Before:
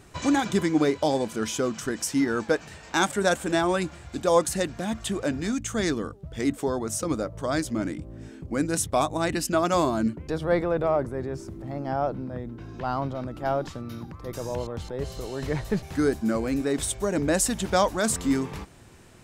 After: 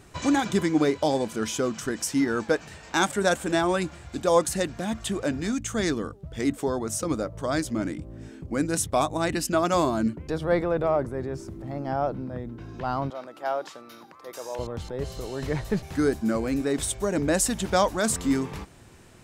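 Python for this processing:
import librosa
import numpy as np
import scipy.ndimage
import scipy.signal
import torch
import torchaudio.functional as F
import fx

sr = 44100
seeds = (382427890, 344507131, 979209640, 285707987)

y = fx.highpass(x, sr, hz=520.0, slope=12, at=(13.1, 14.59))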